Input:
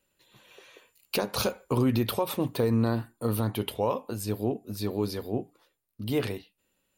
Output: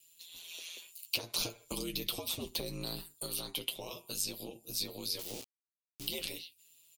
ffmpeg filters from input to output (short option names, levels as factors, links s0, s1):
-filter_complex "[0:a]asplit=2[s0][s1];[s1]adelay=16,volume=0.224[s2];[s0][s2]amix=inputs=2:normalize=0,aeval=exprs='val(0)*sin(2*PI*84*n/s)':c=same,asplit=2[s3][s4];[s4]acompressor=threshold=0.0158:ratio=6,volume=1.06[s5];[s3][s5]amix=inputs=2:normalize=0,flanger=delay=7.3:depth=1.4:regen=29:speed=0.32:shape=sinusoidal,acrossover=split=270|2400|7300[s6][s7][s8][s9];[s6]acompressor=threshold=0.00794:ratio=4[s10];[s7]acompressor=threshold=0.0158:ratio=4[s11];[s8]acompressor=threshold=0.00316:ratio=4[s12];[s9]acompressor=threshold=0.00112:ratio=4[s13];[s10][s11][s12][s13]amix=inputs=4:normalize=0,asettb=1/sr,asplit=3[s14][s15][s16];[s14]atrim=end=1.404[s17];[s15]atrim=start=1.4:end=3.15,asetpts=PTS-STARTPTS,afade=t=in:d=0.004:c=qsin,afade=t=out:st=1.746:d=0.004:c=qsin,lowshelf=f=360:g=6[s18];[s16]atrim=start=3.146[s19];[s17][s18]acrossfade=d=0.004:c1=hsin:c2=qsin[s20];[s20][s19]acrossfade=d=0.004:c1=qsin:c2=hsin,asettb=1/sr,asplit=3[s21][s22][s23];[s21]atrim=end=5.194[s24];[s22]atrim=start=5.19:end=6.08,asetpts=PTS-STARTPTS,afade=t=in:d=0.004:c=qsin,afade=t=out:st=0.886:d=0.004:c=qsin,aeval=exprs='val(0)*gte(abs(val(0)),0.00562)':c=same[s25];[s23]atrim=start=6.076[s26];[s24][s25]acrossfade=d=0.004:c1=hsin:c2=qsin[s27];[s27][s26]acrossfade=d=0.004:c1=qsin:c2=hsin,aexciter=amount=8.4:drive=6.7:freq=2500,volume=0.398"